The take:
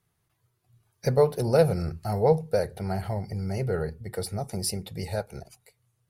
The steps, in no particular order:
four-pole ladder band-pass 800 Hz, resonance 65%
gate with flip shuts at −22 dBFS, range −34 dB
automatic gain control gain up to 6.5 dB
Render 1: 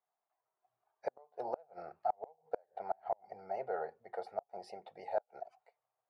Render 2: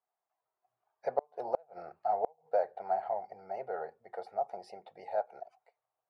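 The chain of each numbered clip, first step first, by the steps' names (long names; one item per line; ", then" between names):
automatic gain control, then four-pole ladder band-pass, then gate with flip
four-pole ladder band-pass, then gate with flip, then automatic gain control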